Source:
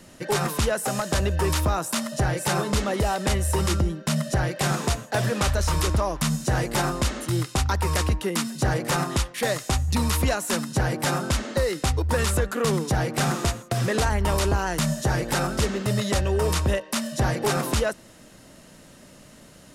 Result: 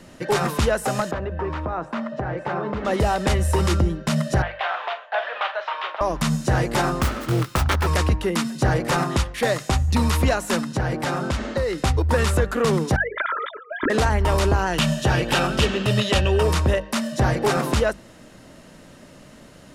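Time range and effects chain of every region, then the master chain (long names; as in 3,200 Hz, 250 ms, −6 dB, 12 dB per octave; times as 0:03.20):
0:01.11–0:02.85: low-pass filter 1,700 Hz + downward compressor 4 to 1, threshold −24 dBFS + low-shelf EQ 130 Hz −9 dB
0:04.42–0:06.01: elliptic band-pass filter 660–3,300 Hz, stop band 60 dB + double-tracking delay 43 ms −11.5 dB
0:07.00–0:07.87: phase distortion by the signal itself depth 0.51 ms + parametric band 1,300 Hz +7.5 dB 0.28 octaves
0:10.61–0:11.78: high-shelf EQ 9,200 Hz −7 dB + downward compressor 2 to 1, threshold −25 dBFS
0:12.96–0:13.90: three sine waves on the formant tracks + phaser with its sweep stopped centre 2,700 Hz, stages 6 + comb filter 3 ms
0:14.73–0:16.43: parametric band 2,900 Hz +11 dB 0.78 octaves + notch filter 2,100 Hz
whole clip: high-shelf EQ 5,300 Hz −9.5 dB; mains-hum notches 50/100/150/200 Hz; level +4 dB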